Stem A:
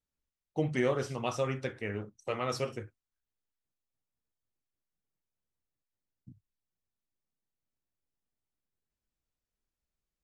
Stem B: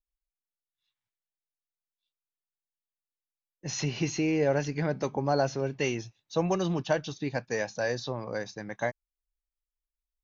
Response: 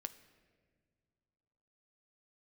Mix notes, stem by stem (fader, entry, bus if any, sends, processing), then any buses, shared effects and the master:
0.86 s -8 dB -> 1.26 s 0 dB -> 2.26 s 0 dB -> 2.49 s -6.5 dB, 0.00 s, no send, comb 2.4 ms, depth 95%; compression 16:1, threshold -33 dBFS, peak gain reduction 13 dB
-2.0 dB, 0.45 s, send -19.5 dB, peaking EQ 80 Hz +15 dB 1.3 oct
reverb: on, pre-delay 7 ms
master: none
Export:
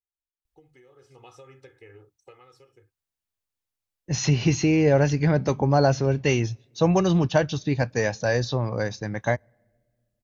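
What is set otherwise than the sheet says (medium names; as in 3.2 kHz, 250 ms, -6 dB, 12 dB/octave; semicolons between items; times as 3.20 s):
stem A -8.0 dB -> -19.0 dB; stem B -2.0 dB -> +5.0 dB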